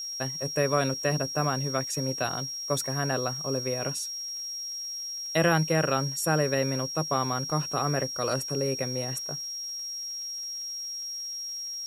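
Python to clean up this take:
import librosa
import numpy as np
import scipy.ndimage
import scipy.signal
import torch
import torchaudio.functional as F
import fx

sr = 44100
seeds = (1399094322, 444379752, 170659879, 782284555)

y = fx.fix_declick_ar(x, sr, threshold=6.5)
y = fx.notch(y, sr, hz=5600.0, q=30.0)
y = fx.noise_reduce(y, sr, print_start_s=4.62, print_end_s=5.12, reduce_db=30.0)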